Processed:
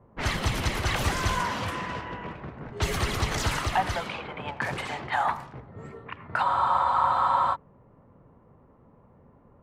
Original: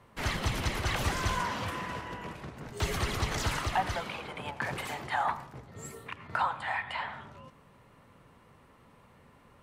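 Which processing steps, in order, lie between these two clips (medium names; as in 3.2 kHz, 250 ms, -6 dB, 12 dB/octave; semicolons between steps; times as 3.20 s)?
level-controlled noise filter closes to 650 Hz, open at -30 dBFS; spectral freeze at 6.46 s, 1.07 s; trim +4 dB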